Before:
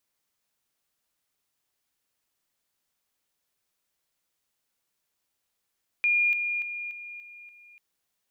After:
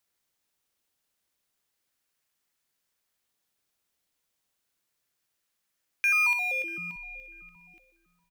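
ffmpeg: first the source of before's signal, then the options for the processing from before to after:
-f lavfi -i "aevalsrc='pow(10,(-20-6*floor(t/0.29))/20)*sin(2*PI*2420*t)':d=1.74:s=44100"
-filter_complex "[0:a]highpass=f=1.4k:w=0.5412,highpass=f=1.4k:w=1.3066,asplit=2[a][b];[b]acrusher=samples=14:mix=1:aa=0.000001:lfo=1:lforange=8.4:lforate=0.31,volume=-11dB[c];[a][c]amix=inputs=2:normalize=0,asplit=2[d][e];[e]adelay=641,lowpass=f=2k:p=1,volume=-18dB,asplit=2[f][g];[g]adelay=641,lowpass=f=2k:p=1,volume=0.3,asplit=2[h][i];[i]adelay=641,lowpass=f=2k:p=1,volume=0.3[j];[d][f][h][j]amix=inputs=4:normalize=0"

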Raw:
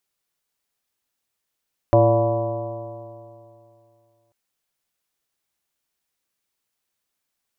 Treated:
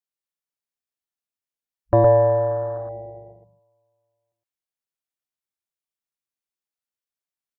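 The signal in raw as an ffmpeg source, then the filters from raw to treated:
-f lavfi -i "aevalsrc='0.158*pow(10,-3*t/2.6)*sin(2*PI*111.2*t)+0.0251*pow(10,-3*t/2.6)*sin(2*PI*223.59*t)+0.112*pow(10,-3*t/2.6)*sin(2*PI*338.35*t)+0.0398*pow(10,-3*t/2.6)*sin(2*PI*456.61*t)+0.237*pow(10,-3*t/2.6)*sin(2*PI*579.44*t)+0.1*pow(10,-3*t/2.6)*sin(2*PI*707.84*t)+0.0237*pow(10,-3*t/2.6)*sin(2*PI*842.75*t)+0.0596*pow(10,-3*t/2.6)*sin(2*PI*985*t)+0.0168*pow(10,-3*t/2.6)*sin(2*PI*1135.35*t)':d=2.39:s=44100"
-filter_complex "[0:a]afwtdn=0.0282,asplit=2[a][b];[b]aecho=0:1:114:0.668[c];[a][c]amix=inputs=2:normalize=0"

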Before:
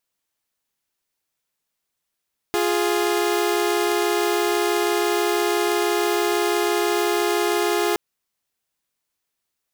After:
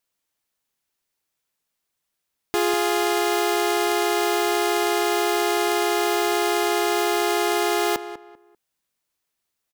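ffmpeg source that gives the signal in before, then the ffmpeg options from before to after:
-f lavfi -i "aevalsrc='0.112*((2*mod(349.23*t,1)-1)+(2*mod(415.3*t,1)-1))':d=5.42:s=44100"
-filter_complex "[0:a]asplit=2[a][b];[b]adelay=196,lowpass=f=2.1k:p=1,volume=-11.5dB,asplit=2[c][d];[d]adelay=196,lowpass=f=2.1k:p=1,volume=0.28,asplit=2[e][f];[f]adelay=196,lowpass=f=2.1k:p=1,volume=0.28[g];[a][c][e][g]amix=inputs=4:normalize=0"

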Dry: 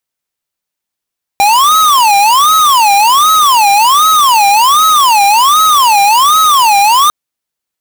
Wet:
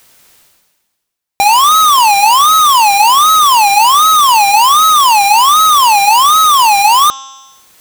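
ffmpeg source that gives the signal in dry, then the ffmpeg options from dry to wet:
-f lavfi -i "aevalsrc='0.447*(2*lt(mod((1039*t-241/(2*PI*1.3)*sin(2*PI*1.3*t)),1),0.5)-1)':d=5.7:s=44100"
-af "bandreject=f=268.4:t=h:w=4,bandreject=f=536.8:t=h:w=4,bandreject=f=805.2:t=h:w=4,bandreject=f=1.0736k:t=h:w=4,bandreject=f=1.342k:t=h:w=4,bandreject=f=1.6104k:t=h:w=4,bandreject=f=1.8788k:t=h:w=4,bandreject=f=2.1472k:t=h:w=4,bandreject=f=2.4156k:t=h:w=4,bandreject=f=2.684k:t=h:w=4,bandreject=f=2.9524k:t=h:w=4,bandreject=f=3.2208k:t=h:w=4,bandreject=f=3.4892k:t=h:w=4,bandreject=f=3.7576k:t=h:w=4,bandreject=f=4.026k:t=h:w=4,bandreject=f=4.2944k:t=h:w=4,bandreject=f=4.5628k:t=h:w=4,bandreject=f=4.8312k:t=h:w=4,bandreject=f=5.0996k:t=h:w=4,bandreject=f=5.368k:t=h:w=4,bandreject=f=5.6364k:t=h:w=4,bandreject=f=5.9048k:t=h:w=4,bandreject=f=6.1732k:t=h:w=4,bandreject=f=6.4416k:t=h:w=4,bandreject=f=6.71k:t=h:w=4,bandreject=f=6.9784k:t=h:w=4,bandreject=f=7.2468k:t=h:w=4,bandreject=f=7.5152k:t=h:w=4,bandreject=f=7.7836k:t=h:w=4,areverse,acompressor=mode=upward:threshold=-19dB:ratio=2.5,areverse"

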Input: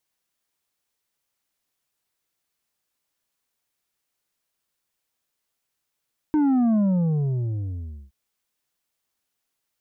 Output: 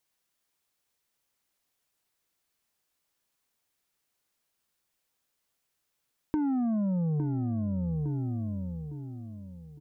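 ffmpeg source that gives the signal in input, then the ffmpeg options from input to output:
-f lavfi -i "aevalsrc='0.133*clip((1.77-t)/1.36,0,1)*tanh(2*sin(2*PI*310*1.77/log(65/310)*(exp(log(65/310)*t/1.77)-1)))/tanh(2)':d=1.77:s=44100"
-filter_complex "[0:a]asplit=2[a][b];[b]adelay=858,lowpass=f=1.1k:p=1,volume=-6.5dB,asplit=2[c][d];[d]adelay=858,lowpass=f=1.1k:p=1,volume=0.33,asplit=2[e][f];[f]adelay=858,lowpass=f=1.1k:p=1,volume=0.33,asplit=2[g][h];[h]adelay=858,lowpass=f=1.1k:p=1,volume=0.33[i];[a][c][e][g][i]amix=inputs=5:normalize=0,acompressor=threshold=-27dB:ratio=10"

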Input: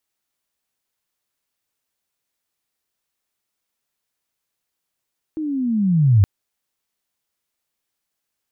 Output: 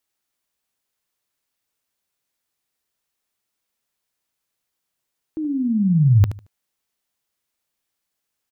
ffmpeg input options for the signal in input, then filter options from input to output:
-f lavfi -i "aevalsrc='pow(10,(-22.5+14*t/0.87)/20)*sin(2*PI*(320*t-228*t*t/(2*0.87)))':d=0.87:s=44100"
-af "aecho=1:1:75|150|225:0.251|0.0553|0.0122"

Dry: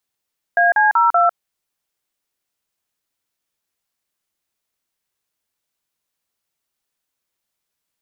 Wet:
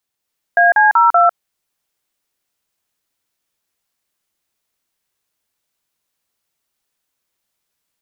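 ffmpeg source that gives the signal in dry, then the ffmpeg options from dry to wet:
-f lavfi -i "aevalsrc='0.211*clip(min(mod(t,0.191),0.151-mod(t,0.191))/0.002,0,1)*(eq(floor(t/0.191),0)*(sin(2*PI*697*mod(t,0.191))+sin(2*PI*1633*mod(t,0.191)))+eq(floor(t/0.191),1)*(sin(2*PI*852*mod(t,0.191))+sin(2*PI*1633*mod(t,0.191)))+eq(floor(t/0.191),2)*(sin(2*PI*941*mod(t,0.191))+sin(2*PI*1336*mod(t,0.191)))+eq(floor(t/0.191),3)*(sin(2*PI*697*mod(t,0.191))+sin(2*PI*1336*mod(t,0.191))))':d=0.764:s=44100"
-af "dynaudnorm=f=170:g=3:m=4dB"

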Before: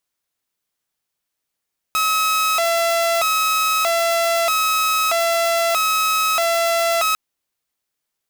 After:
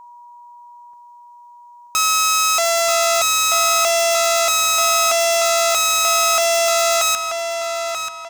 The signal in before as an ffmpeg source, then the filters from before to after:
-f lavfi -i "aevalsrc='0.211*(2*mod((976.5*t+303.5/0.79*(0.5-abs(mod(0.79*t,1)-0.5))),1)-1)':d=5.2:s=44100"
-filter_complex "[0:a]equalizer=f=6.6k:w=1.7:g=10,aeval=exprs='val(0)+0.0112*sin(2*PI*960*n/s)':c=same,asplit=2[a][b];[b]adelay=934,lowpass=f=4.3k:p=1,volume=-5.5dB,asplit=2[c][d];[d]adelay=934,lowpass=f=4.3k:p=1,volume=0.38,asplit=2[e][f];[f]adelay=934,lowpass=f=4.3k:p=1,volume=0.38,asplit=2[g][h];[h]adelay=934,lowpass=f=4.3k:p=1,volume=0.38,asplit=2[i][j];[j]adelay=934,lowpass=f=4.3k:p=1,volume=0.38[k];[c][e][g][i][k]amix=inputs=5:normalize=0[l];[a][l]amix=inputs=2:normalize=0"

